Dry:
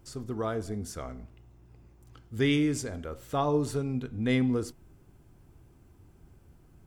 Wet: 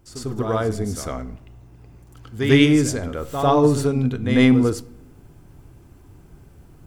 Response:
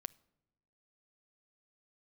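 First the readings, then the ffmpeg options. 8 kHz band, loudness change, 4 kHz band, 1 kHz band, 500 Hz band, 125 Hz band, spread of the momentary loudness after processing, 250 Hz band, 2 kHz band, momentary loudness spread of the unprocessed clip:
+10.0 dB, +11.0 dB, +11.0 dB, +10.5 dB, +10.5 dB, +11.0 dB, 16 LU, +11.0 dB, +11.0 dB, 15 LU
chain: -filter_complex "[0:a]acontrast=39,aeval=exprs='0.335*(cos(1*acos(clip(val(0)/0.335,-1,1)))-cos(1*PI/2))+0.0237*(cos(3*acos(clip(val(0)/0.335,-1,1)))-cos(3*PI/2))':c=same,asplit=2[s0][s1];[1:a]atrim=start_sample=2205,adelay=98[s2];[s1][s2]afir=irnorm=-1:irlink=0,volume=3.76[s3];[s0][s3]amix=inputs=2:normalize=0,volume=0.794"

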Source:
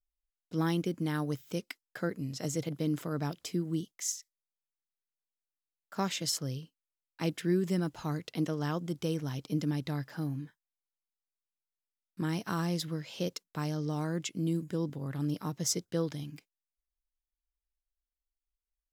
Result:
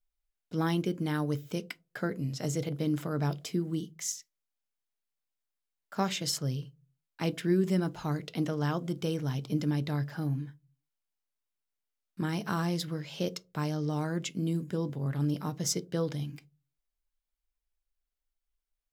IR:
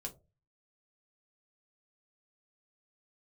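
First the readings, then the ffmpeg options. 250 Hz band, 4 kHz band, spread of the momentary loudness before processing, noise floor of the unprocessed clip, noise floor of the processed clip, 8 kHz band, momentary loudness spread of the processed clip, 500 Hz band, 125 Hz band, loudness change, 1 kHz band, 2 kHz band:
+1.5 dB, +1.0 dB, 8 LU, under -85 dBFS, under -85 dBFS, -0.5 dB, 7 LU, +2.0 dB, +2.5 dB, +1.5 dB, +2.5 dB, +2.0 dB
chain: -filter_complex "[0:a]asplit=2[s0][s1];[1:a]atrim=start_sample=2205,lowpass=5300[s2];[s1][s2]afir=irnorm=-1:irlink=0,volume=0.562[s3];[s0][s3]amix=inputs=2:normalize=0"

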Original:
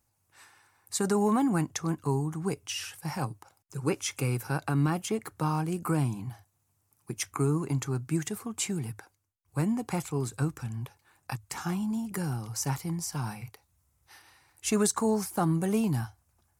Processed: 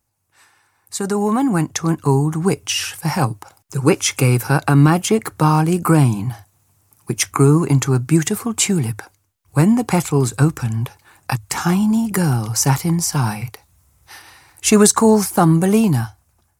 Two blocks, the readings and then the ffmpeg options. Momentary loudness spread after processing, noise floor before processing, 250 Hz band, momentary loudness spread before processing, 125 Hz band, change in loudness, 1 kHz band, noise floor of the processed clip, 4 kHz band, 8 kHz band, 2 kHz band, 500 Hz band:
13 LU, -74 dBFS, +13.5 dB, 13 LU, +14.0 dB, +13.5 dB, +13.5 dB, -64 dBFS, +14.0 dB, +14.0 dB, +14.0 dB, +13.5 dB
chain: -af "dynaudnorm=f=660:g=5:m=4.47,volume=1.33"

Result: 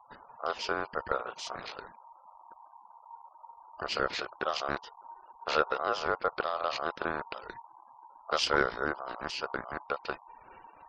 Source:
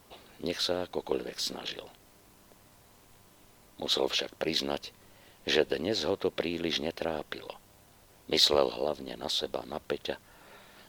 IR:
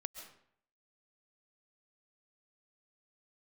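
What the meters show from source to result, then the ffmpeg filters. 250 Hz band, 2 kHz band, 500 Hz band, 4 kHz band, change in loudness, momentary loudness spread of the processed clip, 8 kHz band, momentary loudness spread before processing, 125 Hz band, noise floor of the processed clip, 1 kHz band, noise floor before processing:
-7.0 dB, +4.5 dB, -3.5 dB, -8.0 dB, -2.5 dB, 22 LU, -6.5 dB, 13 LU, -4.0 dB, -58 dBFS, +7.0 dB, -59 dBFS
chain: -af "aemphasis=mode=reproduction:type=bsi,aeval=exprs='val(0)*sin(2*PI*930*n/s)':c=same,afftfilt=real='re*gte(hypot(re,im),0.00251)':imag='im*gte(hypot(re,im),0.00251)':win_size=1024:overlap=0.75"

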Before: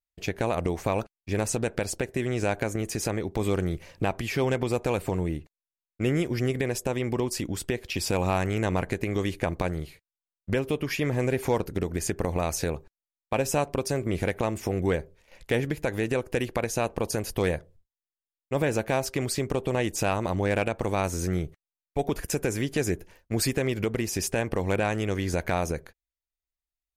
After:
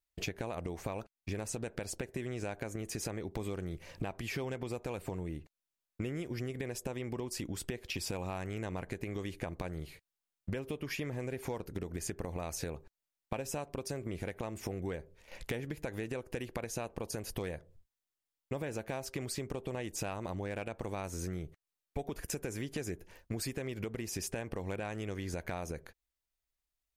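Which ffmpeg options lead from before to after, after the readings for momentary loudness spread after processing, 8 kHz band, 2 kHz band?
5 LU, -9.0 dB, -11.5 dB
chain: -af "acompressor=threshold=0.0112:ratio=6,volume=1.41"

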